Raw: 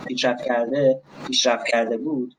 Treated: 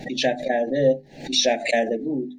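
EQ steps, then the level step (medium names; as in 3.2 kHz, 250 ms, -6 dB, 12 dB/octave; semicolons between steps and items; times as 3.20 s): Chebyshev band-stop 800–1700 Hz, order 3; bass shelf 64 Hz +11.5 dB; hum notches 50/100/150/200/250/300/350/400 Hz; 0.0 dB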